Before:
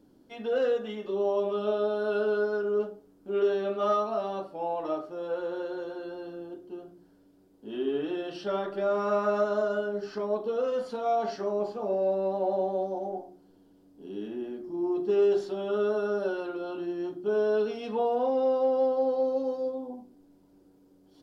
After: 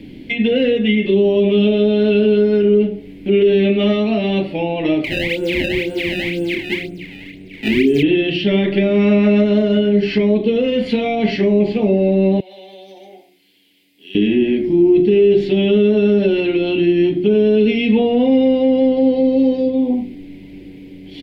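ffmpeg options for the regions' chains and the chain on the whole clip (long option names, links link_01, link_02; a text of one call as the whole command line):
ffmpeg -i in.wav -filter_complex "[0:a]asettb=1/sr,asplit=3[link_01][link_02][link_03];[link_01]atrim=end=5.044[link_04];[link_02]atrim=start=5.04:end=8.03,asetpts=PTS-STARTPTS,afade=type=in:duration=0.004:curve=qsin,afade=type=out:start_time=2.986:duration=0.004:curve=qsin,equalizer=frequency=4200:width=0.42:gain=-7,acrusher=samples=23:mix=1:aa=0.000001:lfo=1:lforange=36.8:lforate=2,asplit=2[link_05][link_06];[link_06]adelay=27,volume=-6.5dB[link_07];[link_05][link_07]amix=inputs=2:normalize=0,atrim=end_sample=131859[link_08];[link_03]atrim=start=8.026[link_09];[link_04][link_08]acrossfade=duration=0.004:curve1=hsin:curve2=qsin[link_10];[link_10][link_09]acrossfade=duration=0.004:curve1=qsin:curve2=hsin,asettb=1/sr,asplit=3[link_11][link_12][link_13];[link_11]atrim=end=12.404[link_14];[link_12]atrim=start=12.4:end=14.15,asetpts=PTS-STARTPTS,afade=type=in:duration=0.004:curve=qsin,afade=type=out:start_time=1.746:duration=0.004:curve=qsin,aderivative,acompressor=threshold=-53dB:ratio=3:attack=3.2:release=140:knee=1:detection=peak[link_15];[link_13]atrim=start=14.146[link_16];[link_14][link_15]acrossfade=duration=0.004:curve1=hsin:curve2=qsin[link_17];[link_17][link_16]acrossfade=duration=0.004:curve1=qsin:curve2=hsin,firequalizer=gain_entry='entry(150,0);entry(540,-11);entry(1300,-23);entry(2100,13);entry(5700,-15)':delay=0.05:min_phase=1,acrossover=split=350[link_18][link_19];[link_19]acompressor=threshold=-49dB:ratio=6[link_20];[link_18][link_20]amix=inputs=2:normalize=0,alimiter=level_in=32dB:limit=-1dB:release=50:level=0:latency=1,volume=-4.5dB" out.wav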